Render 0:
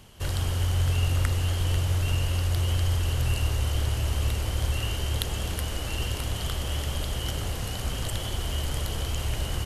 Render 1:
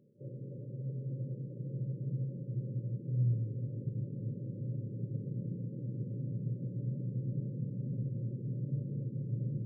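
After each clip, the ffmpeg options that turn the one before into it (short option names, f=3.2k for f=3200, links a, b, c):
-af "afftfilt=real='re*between(b*sr/4096,110,590)':imag='im*between(b*sr/4096,110,590)':win_size=4096:overlap=0.75,asubboost=boost=7:cutoff=180,volume=-8dB"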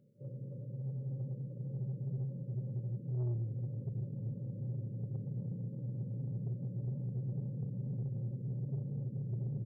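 -af "aecho=1:1:1.4:0.52,asoftclip=type=tanh:threshold=-30dB,volume=-1.5dB"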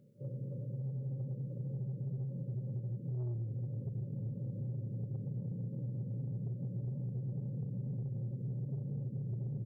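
-af "acompressor=threshold=-40dB:ratio=6,volume=4dB"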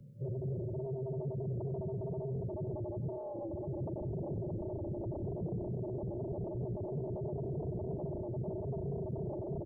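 -filter_complex "[0:a]acrossover=split=130|280[a][b][c];[a]aeval=exprs='0.0158*sin(PI/2*4.47*val(0)/0.0158)':c=same[d];[d][b][c]amix=inputs=3:normalize=0,aecho=1:1:96:0.2"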